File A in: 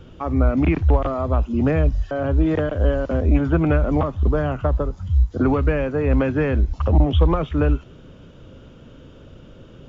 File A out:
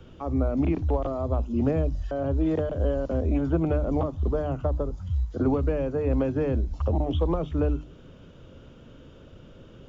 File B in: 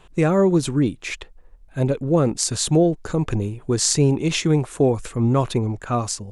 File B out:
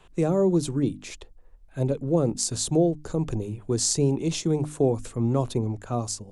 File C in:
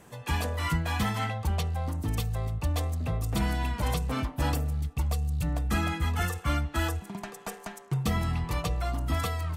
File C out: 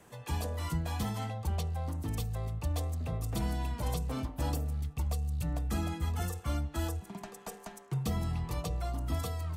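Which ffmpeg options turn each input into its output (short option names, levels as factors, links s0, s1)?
-filter_complex "[0:a]bandreject=f=50:t=h:w=6,bandreject=f=100:t=h:w=6,bandreject=f=150:t=h:w=6,bandreject=f=200:t=h:w=6,bandreject=f=250:t=h:w=6,bandreject=f=300:t=h:w=6,acrossover=split=220|1000|3500[s0][s1][s2][s3];[s0]alimiter=limit=0.15:level=0:latency=1:release=190[s4];[s2]acompressor=threshold=0.00355:ratio=6[s5];[s4][s1][s5][s3]amix=inputs=4:normalize=0,volume=0.631"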